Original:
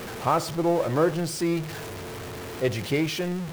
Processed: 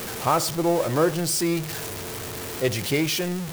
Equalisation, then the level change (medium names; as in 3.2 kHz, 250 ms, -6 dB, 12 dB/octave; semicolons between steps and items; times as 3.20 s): treble shelf 4.6 kHz +11.5 dB; +1.0 dB